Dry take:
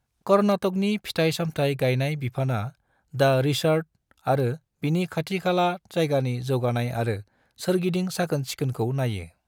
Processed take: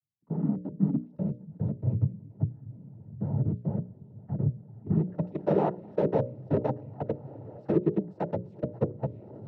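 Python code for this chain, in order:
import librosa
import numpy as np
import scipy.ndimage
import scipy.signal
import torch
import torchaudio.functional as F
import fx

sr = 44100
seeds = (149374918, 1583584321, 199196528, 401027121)

p1 = fx.high_shelf(x, sr, hz=6100.0, db=9.5)
p2 = p1 + fx.echo_diffused(p1, sr, ms=544, feedback_pct=68, wet_db=-15, dry=0)
p3 = fx.level_steps(p2, sr, step_db=23)
p4 = fx.filter_sweep_lowpass(p3, sr, from_hz=170.0, to_hz=500.0, start_s=4.69, end_s=5.32, q=0.96)
p5 = 10.0 ** (-31.0 / 20.0) * np.tanh(p4 / 10.0 ** (-31.0 / 20.0))
p6 = p4 + (p5 * librosa.db_to_amplitude(-4.0))
p7 = fx.noise_vocoder(p6, sr, seeds[0], bands=12)
y = fx.hum_notches(p7, sr, base_hz=60, count=10)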